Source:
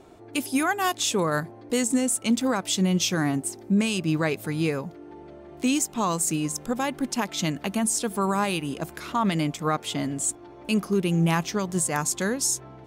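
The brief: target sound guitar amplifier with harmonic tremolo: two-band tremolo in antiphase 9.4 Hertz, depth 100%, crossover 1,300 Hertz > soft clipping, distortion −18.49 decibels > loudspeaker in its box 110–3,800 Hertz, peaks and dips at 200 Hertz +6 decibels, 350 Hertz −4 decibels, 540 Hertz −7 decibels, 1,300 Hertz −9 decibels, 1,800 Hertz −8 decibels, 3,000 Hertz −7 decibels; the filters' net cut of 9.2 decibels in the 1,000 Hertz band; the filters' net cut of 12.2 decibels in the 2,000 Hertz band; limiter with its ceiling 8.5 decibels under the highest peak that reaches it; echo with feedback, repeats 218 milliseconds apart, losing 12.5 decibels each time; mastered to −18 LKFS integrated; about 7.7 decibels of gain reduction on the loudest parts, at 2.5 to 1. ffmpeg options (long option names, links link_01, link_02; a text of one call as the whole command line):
ffmpeg -i in.wav -filter_complex "[0:a]equalizer=frequency=1000:width_type=o:gain=-7,equalizer=frequency=2000:width_type=o:gain=-6.5,acompressor=threshold=-30dB:ratio=2.5,alimiter=level_in=1dB:limit=-24dB:level=0:latency=1,volume=-1dB,aecho=1:1:218|436|654:0.237|0.0569|0.0137,acrossover=split=1300[link_01][link_02];[link_01]aeval=exprs='val(0)*(1-1/2+1/2*cos(2*PI*9.4*n/s))':channel_layout=same[link_03];[link_02]aeval=exprs='val(0)*(1-1/2-1/2*cos(2*PI*9.4*n/s))':channel_layout=same[link_04];[link_03][link_04]amix=inputs=2:normalize=0,asoftclip=threshold=-28.5dB,highpass=110,equalizer=frequency=200:width_type=q:width=4:gain=6,equalizer=frequency=350:width_type=q:width=4:gain=-4,equalizer=frequency=540:width_type=q:width=4:gain=-7,equalizer=frequency=1300:width_type=q:width=4:gain=-9,equalizer=frequency=1800:width_type=q:width=4:gain=-8,equalizer=frequency=3000:width_type=q:width=4:gain=-7,lowpass=frequency=3800:width=0.5412,lowpass=frequency=3800:width=1.3066,volume=22.5dB" out.wav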